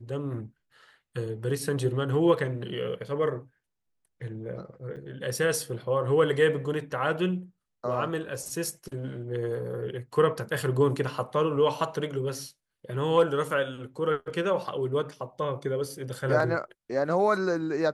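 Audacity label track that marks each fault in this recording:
4.960000	4.970000	drop-out 7.3 ms

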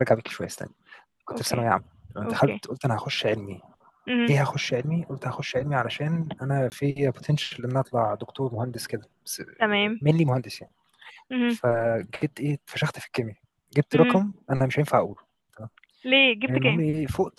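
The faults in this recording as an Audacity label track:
6.700000	6.720000	drop-out 19 ms

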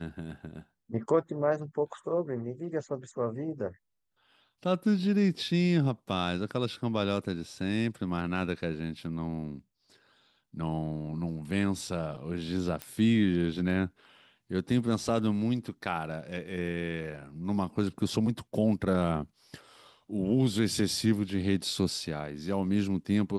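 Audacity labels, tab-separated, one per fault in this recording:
12.820000	12.820000	click −19 dBFS

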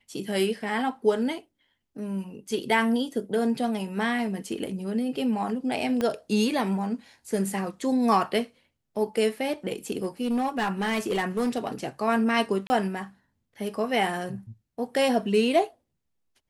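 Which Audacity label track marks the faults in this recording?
6.010000	6.010000	click −14 dBFS
10.030000	11.670000	clipping −21.5 dBFS
12.670000	12.700000	drop-out 30 ms

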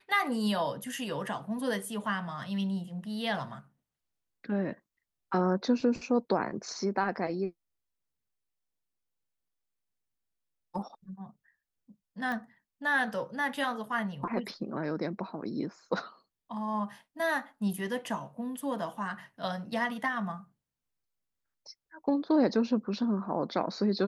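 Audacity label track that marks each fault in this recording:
12.320000	12.320000	click −24 dBFS

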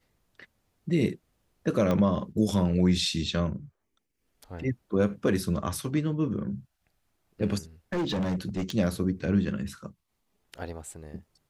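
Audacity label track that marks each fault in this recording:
1.910000	1.910000	click −15 dBFS
7.920000	8.710000	clipping −25 dBFS

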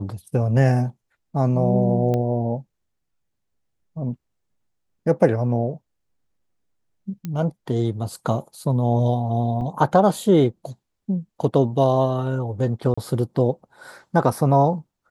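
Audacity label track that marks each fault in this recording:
2.140000	2.140000	click −14 dBFS
7.250000	7.250000	click −17 dBFS
9.610000	9.610000	drop-out 3.4 ms
12.940000	12.970000	drop-out 35 ms

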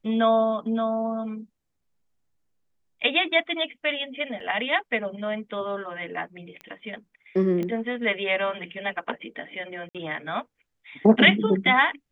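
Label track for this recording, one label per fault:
4.400000	4.400000	drop-out 4.3 ms
6.610000	6.610000	click −25 dBFS
7.630000	7.630000	click −19 dBFS
9.890000	9.950000	drop-out 57 ms

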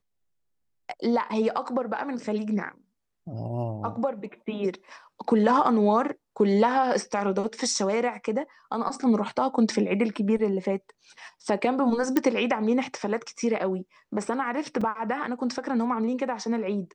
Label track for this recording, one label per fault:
12.170000	12.170000	click −9 dBFS
14.810000	14.810000	drop-out 4.4 ms

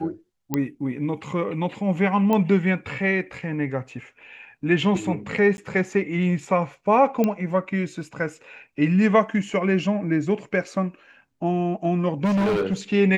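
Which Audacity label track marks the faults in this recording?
0.540000	0.540000	click −9 dBFS
2.330000	2.330000	click −11 dBFS
5.570000	5.580000	drop-out
7.240000	7.240000	click −10 dBFS
12.240000	12.740000	clipping −18.5 dBFS

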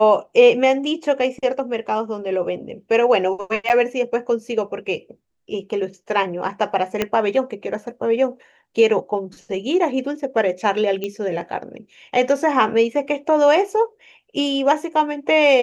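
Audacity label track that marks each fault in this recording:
3.690000	3.700000	drop-out 9.3 ms
7.020000	7.020000	click −6 dBFS
11.040000	11.040000	click −13 dBFS

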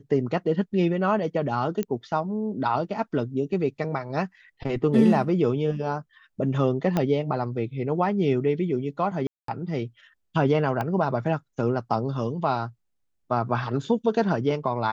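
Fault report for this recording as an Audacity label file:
1.830000	1.830000	click −15 dBFS
6.970000	6.970000	click −11 dBFS
9.270000	9.480000	drop-out 213 ms
10.810000	10.810000	click −16 dBFS

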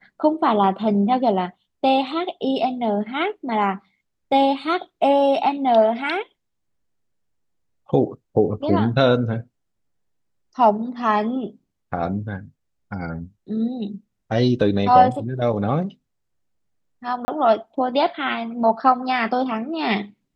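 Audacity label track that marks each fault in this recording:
17.250000	17.280000	drop-out 30 ms

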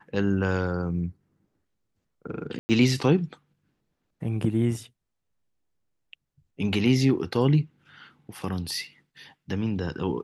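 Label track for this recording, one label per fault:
2.590000	2.690000	drop-out 100 ms

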